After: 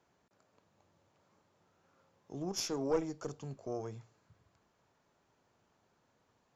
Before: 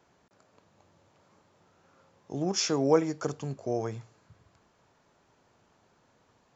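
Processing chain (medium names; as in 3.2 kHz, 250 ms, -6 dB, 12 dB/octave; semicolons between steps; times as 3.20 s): valve stage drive 15 dB, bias 0.75; dynamic bell 1.8 kHz, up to -5 dB, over -52 dBFS, Q 1; trim -3.5 dB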